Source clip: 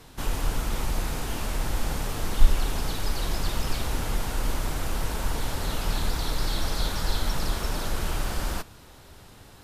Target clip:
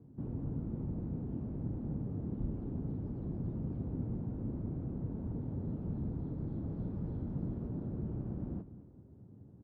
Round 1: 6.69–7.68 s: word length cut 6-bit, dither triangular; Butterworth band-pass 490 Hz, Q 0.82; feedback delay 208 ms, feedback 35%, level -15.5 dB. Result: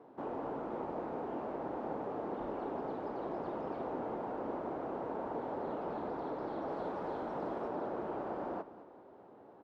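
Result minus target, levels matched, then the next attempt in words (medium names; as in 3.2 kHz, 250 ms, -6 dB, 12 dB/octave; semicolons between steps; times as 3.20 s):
125 Hz band -16.5 dB
6.69–7.68 s: word length cut 6-bit, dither triangular; Butterworth band-pass 170 Hz, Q 0.82; feedback delay 208 ms, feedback 35%, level -15.5 dB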